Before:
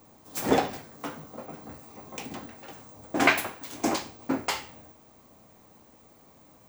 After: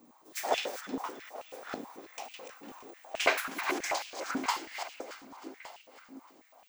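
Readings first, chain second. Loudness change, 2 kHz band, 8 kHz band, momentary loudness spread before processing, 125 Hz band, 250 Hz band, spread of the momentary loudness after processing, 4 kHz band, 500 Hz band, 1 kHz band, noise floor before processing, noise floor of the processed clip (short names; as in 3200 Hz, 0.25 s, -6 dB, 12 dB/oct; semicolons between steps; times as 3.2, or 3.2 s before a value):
-6.0 dB, -4.5 dB, -3.0 dB, 22 LU, -18.0 dB, -10.0 dB, 19 LU, -2.0 dB, -5.0 dB, -3.5 dB, -57 dBFS, -61 dBFS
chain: regenerating reverse delay 0.582 s, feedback 40%, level -8 dB; dynamic EQ 5600 Hz, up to +5 dB, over -48 dBFS, Q 1; on a send: split-band echo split 1100 Hz, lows 0.418 s, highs 0.312 s, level -13 dB; on the sum: stepped high-pass 9.2 Hz 250–2700 Hz; gain -8 dB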